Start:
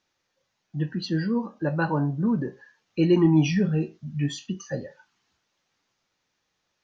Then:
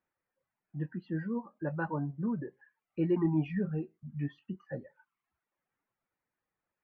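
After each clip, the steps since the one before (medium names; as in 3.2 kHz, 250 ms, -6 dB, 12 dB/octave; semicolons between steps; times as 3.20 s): low-pass 2.1 kHz 24 dB/octave; reverb removal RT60 0.63 s; trim -8.5 dB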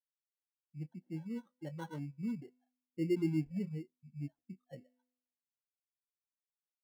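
feedback comb 250 Hz, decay 1.2 s, mix 60%; sample-and-hold 18×; spectral contrast expander 1.5:1; trim +3.5 dB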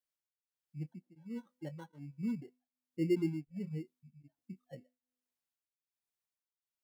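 tremolo of two beating tones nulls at 1.3 Hz; trim +2 dB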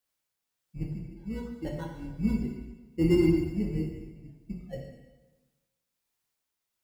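octave divider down 2 oct, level -6 dB; in parallel at -11 dB: saturation -31.5 dBFS, distortion -10 dB; on the sum: plate-style reverb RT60 1.2 s, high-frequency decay 0.95×, DRR 0 dB; trim +5.5 dB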